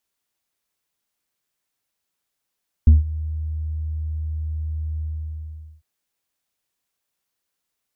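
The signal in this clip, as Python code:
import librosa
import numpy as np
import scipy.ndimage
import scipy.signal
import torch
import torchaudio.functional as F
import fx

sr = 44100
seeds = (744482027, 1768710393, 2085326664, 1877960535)

y = fx.sub_voice(sr, note=39, wave='square', cutoff_hz=110.0, q=0.73, env_oct=1.0, env_s=0.14, attack_ms=2.7, decay_s=0.16, sustain_db=-18.0, release_s=0.82, note_s=2.13, slope=24)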